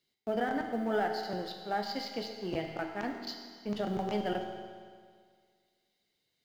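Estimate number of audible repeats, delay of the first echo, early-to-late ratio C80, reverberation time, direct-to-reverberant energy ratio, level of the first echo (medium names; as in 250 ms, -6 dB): no echo, no echo, 6.0 dB, 1.9 s, 2.5 dB, no echo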